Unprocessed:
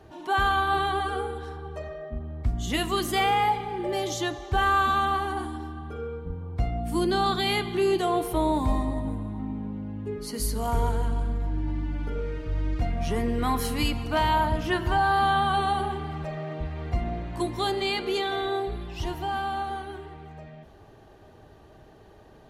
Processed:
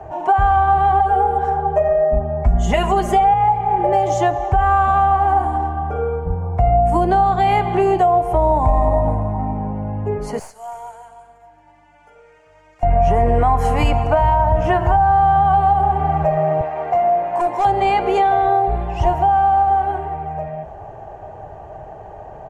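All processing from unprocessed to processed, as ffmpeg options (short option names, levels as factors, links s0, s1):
-filter_complex "[0:a]asettb=1/sr,asplit=3[s0][s1][s2];[s0]atrim=end=1.004[s3];[s1]atrim=start=1:end=3.34,asetpts=PTS-STARTPTS,afade=t=in:d=0.004:c=qsin,afade=t=out:st=2.336:d=0.004:c=qsin,bandreject=f=1200:w=22,aecho=1:1:4.9:0.81,atrim=end_sample=103194[s4];[s2]atrim=start=3.336[s5];[s3][s4]acrossfade=d=0.004:c1=hsin:c2=qsin[s6];[s6][s5]acrossfade=d=0.004:c1=qsin:c2=hsin,asettb=1/sr,asplit=3[s7][s8][s9];[s7]atrim=end=10.394[s10];[s8]atrim=start=10.39:end=12.83,asetpts=PTS-STARTPTS,afade=t=in:d=0.004:c=qsin,afade=t=out:st=2.436:d=0.004:c=qsin,acrossover=split=8800[s11][s12];[s12]acompressor=threshold=0.00398:ratio=4:attack=1:release=60[s13];[s11][s13]amix=inputs=2:normalize=0,aderivative,aeval=exprs='(tanh(31.6*val(0)+0.7)-tanh(0.7))/31.6':c=same[s14];[s9]atrim=start=12.826[s15];[s10][s14]acrossfade=d=0.004:c1=hsin:c2=qsin[s16];[s16][s15]acrossfade=d=0.004:c1=qsin:c2=hsin,asettb=1/sr,asplit=3[s17][s18][s19];[s17]atrim=end=16.614[s20];[s18]atrim=start=16.61:end=17.65,asetpts=PTS-STARTPTS,afade=t=in:d=0.004:c=qsin,afade=t=out:st=1.036:d=0.004:c=qsin,highpass=370,volume=39.8,asoftclip=hard,volume=0.0251[s21];[s19]atrim=start=17.646[s22];[s20][s21]acrossfade=d=0.004:c1=hsin:c2=qsin[s23];[s23][s22]acrossfade=d=0.004:c1=qsin:c2=hsin,firequalizer=gain_entry='entry(150,0);entry(250,-10);entry(710,12);entry(1200,-2);entry(2600,-7);entry(3800,-21);entry(6900,-9);entry(12000,-22)':delay=0.05:min_phase=1,acrossover=split=150[s24][s25];[s25]acompressor=threshold=0.0562:ratio=10[s26];[s24][s26]amix=inputs=2:normalize=0,alimiter=level_in=7.94:limit=0.891:release=50:level=0:latency=1,volume=0.562"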